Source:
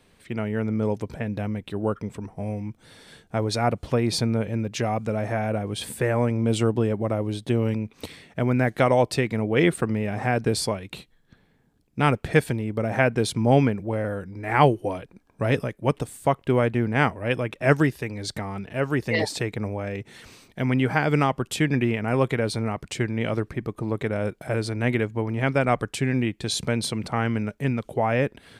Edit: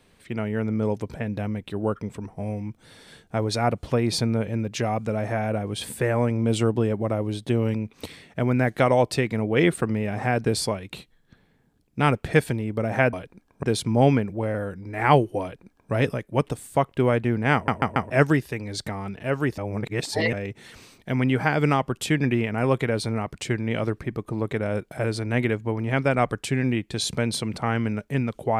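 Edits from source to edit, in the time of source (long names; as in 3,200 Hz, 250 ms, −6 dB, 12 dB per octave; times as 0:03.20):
0:14.92–0:15.42: duplicate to 0:13.13
0:17.04: stutter in place 0.14 s, 4 plays
0:19.08–0:19.83: reverse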